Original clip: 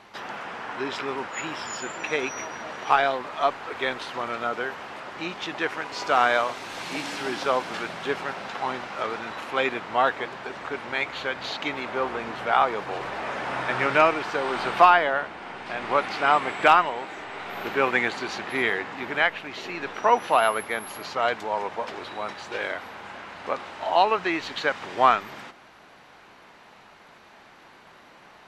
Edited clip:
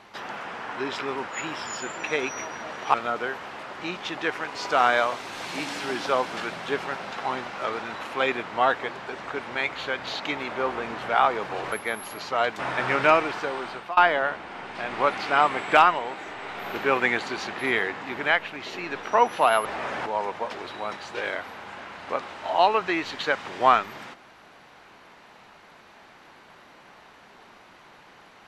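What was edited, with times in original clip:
2.94–4.31 cut
13.09–13.5 swap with 20.56–21.43
14.19–14.88 fade out linear, to -23.5 dB

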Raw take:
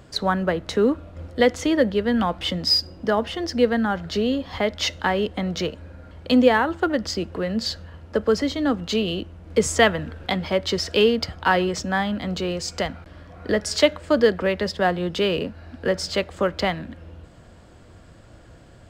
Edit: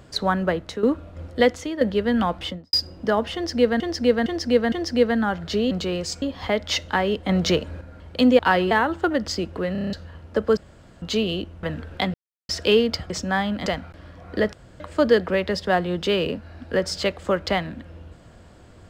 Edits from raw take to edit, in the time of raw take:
0.54–0.83 fade out, to -12 dB
1.46–1.81 fade out quadratic, to -10 dB
2.35–2.73 studio fade out
3.34–3.8 loop, 4 plays
5.4–5.92 gain +5.5 dB
7.51 stutter in place 0.03 s, 7 plays
8.36–8.81 room tone
9.42–9.92 cut
10.43–10.78 mute
11.39–11.71 move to 6.5
12.27–12.78 move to 4.33
13.65–13.92 room tone

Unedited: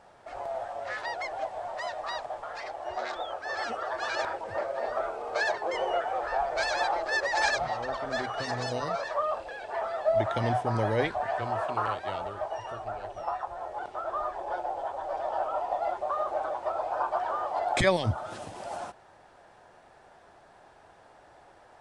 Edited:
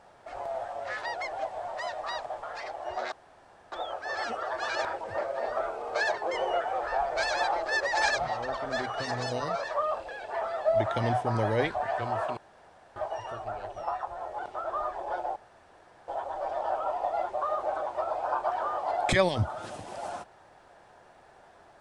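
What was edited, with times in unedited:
3.12 insert room tone 0.60 s
11.77–12.36 room tone
14.76 insert room tone 0.72 s

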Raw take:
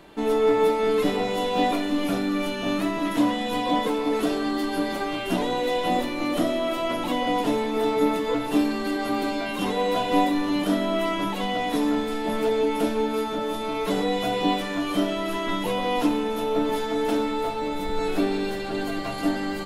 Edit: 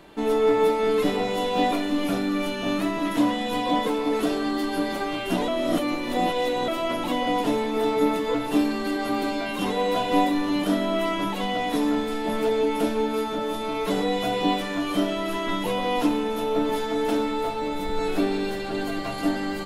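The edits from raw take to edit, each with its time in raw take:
5.48–6.68 reverse

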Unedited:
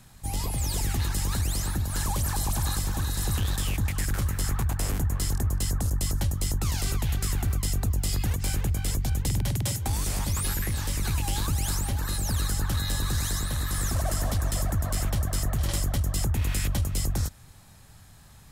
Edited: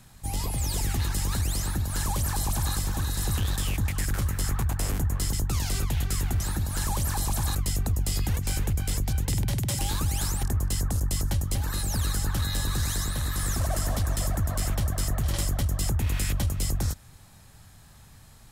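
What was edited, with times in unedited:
1.59–2.74 copy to 7.52
5.33–6.45 move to 11.9
9.76–11.26 cut

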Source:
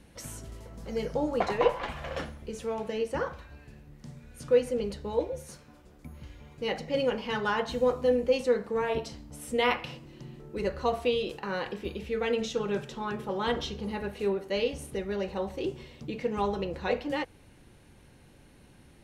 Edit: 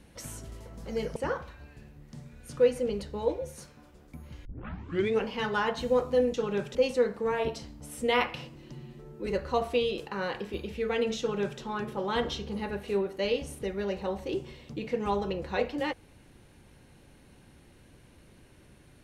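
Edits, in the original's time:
1.16–3.07 cut
6.36 tape start 0.80 s
10.21–10.58 stretch 1.5×
12.51–12.92 copy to 8.25

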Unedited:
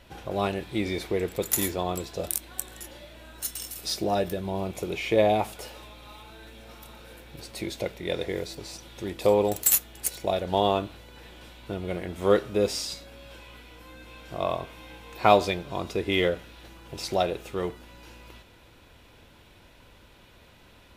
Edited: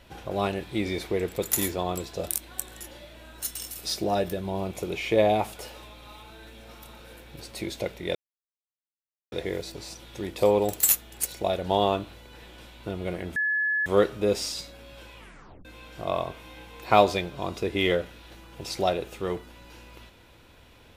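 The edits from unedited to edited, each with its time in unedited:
8.15 insert silence 1.17 s
12.19 add tone 1710 Hz -22.5 dBFS 0.50 s
13.5 tape stop 0.48 s

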